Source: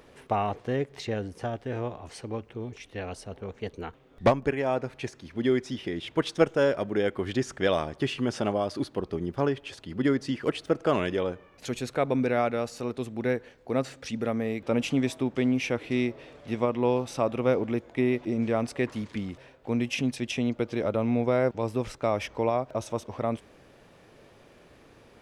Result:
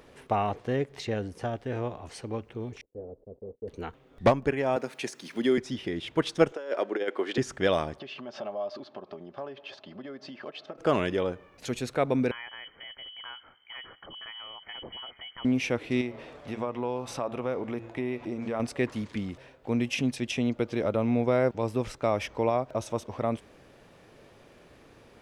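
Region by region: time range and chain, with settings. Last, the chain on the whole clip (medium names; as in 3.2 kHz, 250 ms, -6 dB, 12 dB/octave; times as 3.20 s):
2.81–3.68 s: block-companded coder 3-bit + gate -48 dBFS, range -23 dB + four-pole ladder low-pass 550 Hz, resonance 55%
4.76–5.58 s: high-pass 170 Hz 24 dB/octave + treble shelf 6.8 kHz +10 dB + tape noise reduction on one side only encoder only
6.52–7.38 s: high-pass 320 Hz 24 dB/octave + compressor with a negative ratio -28 dBFS, ratio -0.5 + distance through air 56 m
7.99–10.78 s: compression, threshold -34 dBFS + cabinet simulation 250–4900 Hz, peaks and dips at 310 Hz -7 dB, 600 Hz +10 dB, 960 Hz +6 dB, 2 kHz -4 dB + comb of notches 480 Hz
12.31–15.45 s: Chebyshev band-stop 120–940 Hz, order 3 + compression 2.5:1, threshold -40 dBFS + frequency inversion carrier 3.1 kHz
16.01–18.60 s: peaking EQ 960 Hz +5.5 dB 1.7 oct + de-hum 113.9 Hz, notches 35 + compression 2:1, threshold -33 dBFS
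whole clip: none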